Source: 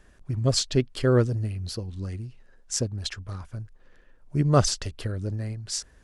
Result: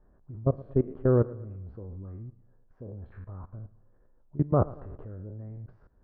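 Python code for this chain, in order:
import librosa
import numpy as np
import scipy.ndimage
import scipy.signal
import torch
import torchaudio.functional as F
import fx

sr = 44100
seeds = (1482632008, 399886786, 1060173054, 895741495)

y = fx.spec_trails(x, sr, decay_s=0.42)
y = fx.level_steps(y, sr, step_db=20)
y = scipy.signal.sosfilt(scipy.signal.butter(4, 1100.0, 'lowpass', fs=sr, output='sos'), y)
y = fx.echo_feedback(y, sr, ms=113, feedback_pct=47, wet_db=-20)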